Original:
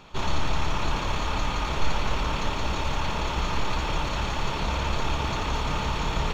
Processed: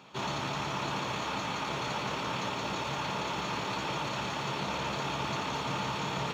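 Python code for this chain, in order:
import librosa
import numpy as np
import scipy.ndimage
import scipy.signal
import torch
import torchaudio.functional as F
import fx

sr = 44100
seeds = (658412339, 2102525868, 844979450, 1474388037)

y = scipy.signal.sosfilt(scipy.signal.butter(4, 120.0, 'highpass', fs=sr, output='sos'), x)
y = fx.doubler(y, sr, ms=15.0, db=-11)
y = y * librosa.db_to_amplitude(-4.0)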